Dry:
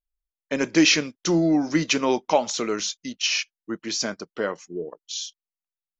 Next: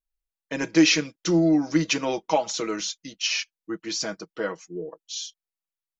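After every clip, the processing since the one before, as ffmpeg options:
-af "aecho=1:1:6.2:0.75,volume=-4dB"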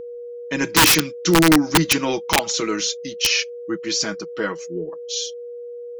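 -af "aeval=exprs='val(0)+0.02*sin(2*PI*480*n/s)':c=same,aeval=exprs='(mod(4.73*val(0)+1,2)-1)/4.73':c=same,equalizer=f=620:w=1.7:g=-7.5,volume=7dB"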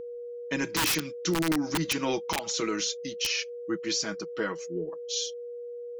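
-af "alimiter=limit=-13.5dB:level=0:latency=1:release=114,volume=-5dB"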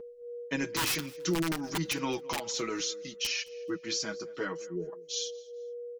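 -af "aecho=1:1:215|430:0.0708|0.0212,flanger=delay=4.9:depth=3.3:regen=-20:speed=0.61:shape=sinusoidal"

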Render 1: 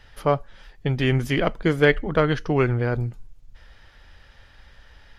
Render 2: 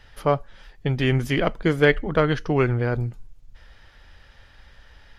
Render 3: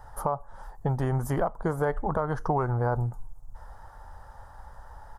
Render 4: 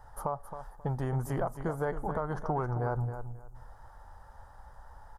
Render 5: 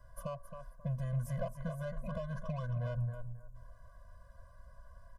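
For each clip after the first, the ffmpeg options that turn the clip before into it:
-af anull
-af "firequalizer=gain_entry='entry(100,0);entry(290,-7);entry(870,12);entry(2400,-25);entry(8100,3)':delay=0.05:min_phase=1,alimiter=limit=-14.5dB:level=0:latency=1:release=265,acompressor=threshold=-30dB:ratio=2,volume=3.5dB"
-af "aecho=1:1:268|536|804:0.316|0.0664|0.0139,volume=-5.5dB"
-filter_complex "[0:a]acrossover=split=340|660|5200[a][b][c][d];[c]asoftclip=type=tanh:threshold=-39dB[e];[a][b][e][d]amix=inputs=4:normalize=0,afftfilt=real='re*eq(mod(floor(b*sr/1024/240),2),0)':imag='im*eq(mod(floor(b*sr/1024/240),2),0)':win_size=1024:overlap=0.75,volume=-2.5dB"

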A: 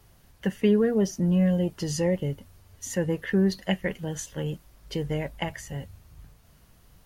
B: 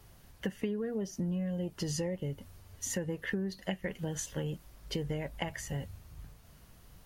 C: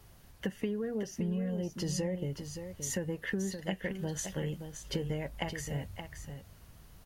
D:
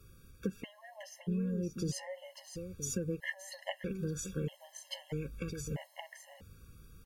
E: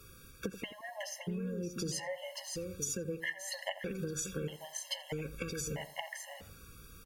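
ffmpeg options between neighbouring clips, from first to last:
-af "acompressor=threshold=-31dB:ratio=12"
-af "aecho=1:1:572:0.376"
-af "afftfilt=real='re*gt(sin(2*PI*0.78*pts/sr)*(1-2*mod(floor(b*sr/1024/550),2)),0)':imag='im*gt(sin(2*PI*0.78*pts/sr)*(1-2*mod(floor(b*sr/1024/550),2)),0)':win_size=1024:overlap=0.75"
-filter_complex "[0:a]lowshelf=f=330:g=-10.5,acompressor=threshold=-44dB:ratio=4,asplit=2[a][b];[b]adelay=85,lowpass=f=1.3k:p=1,volume=-11.5dB,asplit=2[c][d];[d]adelay=85,lowpass=f=1.3k:p=1,volume=0.28,asplit=2[e][f];[f]adelay=85,lowpass=f=1.3k:p=1,volume=0.28[g];[a][c][e][g]amix=inputs=4:normalize=0,volume=9dB"

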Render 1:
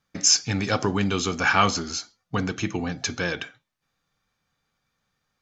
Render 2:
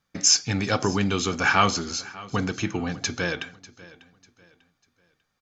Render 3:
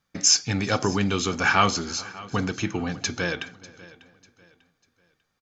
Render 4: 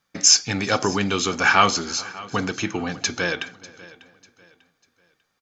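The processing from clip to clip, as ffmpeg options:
-af "aecho=1:1:595|1190|1785:0.1|0.033|0.0109"
-filter_complex "[0:a]asplit=2[a][b];[b]adelay=420,lowpass=f=3.8k:p=1,volume=-24dB,asplit=2[c][d];[d]adelay=420,lowpass=f=3.8k:p=1,volume=0.37[e];[a][c][e]amix=inputs=3:normalize=0"
-af "lowshelf=f=180:g=-9.5,volume=4dB"

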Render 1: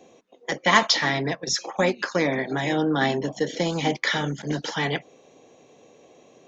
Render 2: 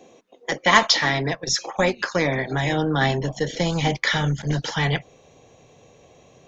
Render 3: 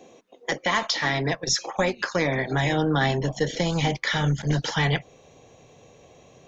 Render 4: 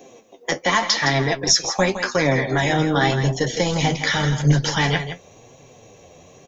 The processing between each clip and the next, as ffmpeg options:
-af "asubboost=boost=10.5:cutoff=89,volume=2.5dB"
-af "alimiter=limit=-11.5dB:level=0:latency=1:release=252"
-af "aecho=1:1:164:0.316,flanger=delay=6.9:depth=5.4:regen=46:speed=0.89:shape=triangular,aexciter=amount=1.6:drive=1.7:freq=5.3k,volume=8dB"

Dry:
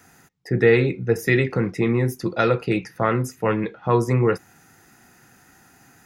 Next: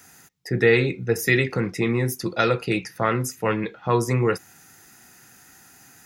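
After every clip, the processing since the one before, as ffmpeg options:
-af "highshelf=f=2.5k:g=10,volume=-2.5dB"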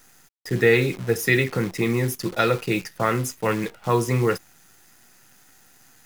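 -af "acrusher=bits=7:dc=4:mix=0:aa=0.000001"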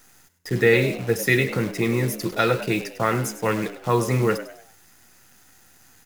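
-filter_complex "[0:a]asplit=5[a][b][c][d][e];[b]adelay=100,afreqshift=85,volume=-13dB[f];[c]adelay=200,afreqshift=170,volume=-21.4dB[g];[d]adelay=300,afreqshift=255,volume=-29.8dB[h];[e]adelay=400,afreqshift=340,volume=-38.2dB[i];[a][f][g][h][i]amix=inputs=5:normalize=0"

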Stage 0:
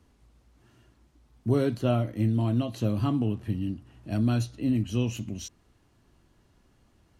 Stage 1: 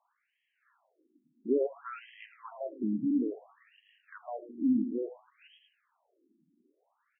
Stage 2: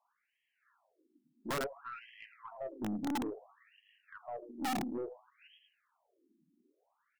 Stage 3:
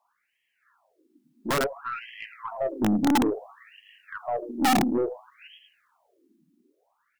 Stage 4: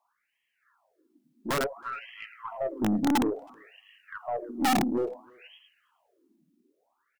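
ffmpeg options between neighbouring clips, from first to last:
-af "aecho=1:1:109|218|327|436|545:0.316|0.158|0.0791|0.0395|0.0198,afftfilt=real='re*between(b*sr/1024,240*pow(2400/240,0.5+0.5*sin(2*PI*0.58*pts/sr))/1.41,240*pow(2400/240,0.5+0.5*sin(2*PI*0.58*pts/sr))*1.41)':imag='im*between(b*sr/1024,240*pow(2400/240,0.5+0.5*sin(2*PI*0.58*pts/sr))/1.41,240*pow(2400/240,0.5+0.5*sin(2*PI*0.58*pts/sr))*1.41)':win_size=1024:overlap=0.75"
-af "aeval=exprs='(mod(14.1*val(0)+1,2)-1)/14.1':c=same,aeval=exprs='(tanh(31.6*val(0)+0.2)-tanh(0.2))/31.6':c=same,volume=-2dB"
-af "dynaudnorm=f=260:g=13:m=7dB,volume=7dB"
-filter_complex "[0:a]asplit=2[a][b];[b]adelay=320,highpass=300,lowpass=3.4k,asoftclip=type=hard:threshold=-26dB,volume=-24dB[c];[a][c]amix=inputs=2:normalize=0,volume=-3dB"

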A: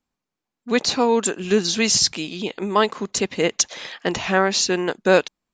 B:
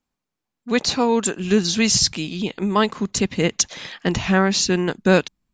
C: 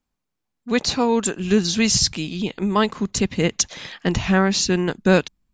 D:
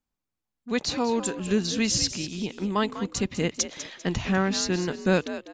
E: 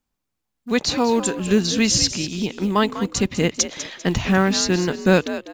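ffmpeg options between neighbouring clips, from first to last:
-af "asubboost=boost=4.5:cutoff=230"
-af "lowshelf=f=91:g=7.5,volume=-1dB"
-filter_complex "[0:a]asplit=4[a][b][c][d];[b]adelay=198,afreqshift=60,volume=-12dB[e];[c]adelay=396,afreqshift=120,volume=-22.2dB[f];[d]adelay=594,afreqshift=180,volume=-32.3dB[g];[a][e][f][g]amix=inputs=4:normalize=0,volume=-6.5dB"
-af "acrusher=bits=9:mode=log:mix=0:aa=0.000001,volume=6.5dB"

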